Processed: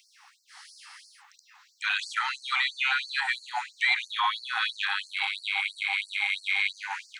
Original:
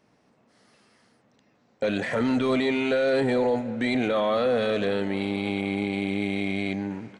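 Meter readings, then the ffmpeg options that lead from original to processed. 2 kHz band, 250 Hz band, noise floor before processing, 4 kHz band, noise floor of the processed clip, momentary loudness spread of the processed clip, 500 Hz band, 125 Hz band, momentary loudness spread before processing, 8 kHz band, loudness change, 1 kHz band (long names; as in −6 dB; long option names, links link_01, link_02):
+6.0 dB, below −40 dB, −65 dBFS, +6.5 dB, −64 dBFS, 6 LU, below −35 dB, below −40 dB, 5 LU, can't be measured, −2.0 dB, +1.0 dB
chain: -filter_complex "[0:a]acrossover=split=4800[link_01][link_02];[link_02]acompressor=threshold=-56dB:ratio=4:attack=1:release=60[link_03];[link_01][link_03]amix=inputs=2:normalize=0,alimiter=level_in=23.5dB:limit=-1dB:release=50:level=0:latency=1,afftfilt=real='re*gte(b*sr/1024,730*pow(4300/730,0.5+0.5*sin(2*PI*3*pts/sr)))':imag='im*gte(b*sr/1024,730*pow(4300/730,0.5+0.5*sin(2*PI*3*pts/sr)))':win_size=1024:overlap=0.75,volume=-7.5dB"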